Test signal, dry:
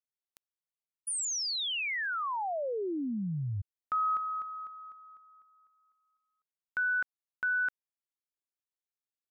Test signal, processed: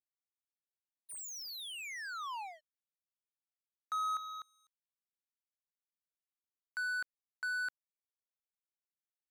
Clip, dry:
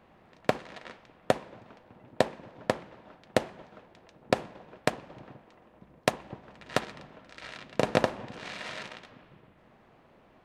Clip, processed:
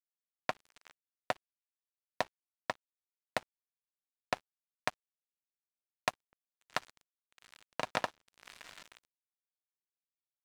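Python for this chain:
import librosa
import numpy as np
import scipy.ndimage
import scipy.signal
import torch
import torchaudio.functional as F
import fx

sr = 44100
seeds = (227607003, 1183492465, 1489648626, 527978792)

y = fx.env_lowpass(x, sr, base_hz=2800.0, full_db=-31.5)
y = fx.low_shelf_res(y, sr, hz=630.0, db=-9.5, q=1.5)
y = np.sign(y) * np.maximum(np.abs(y) - 10.0 ** (-36.5 / 20.0), 0.0)
y = F.gain(torch.from_numpy(y), -4.5).numpy()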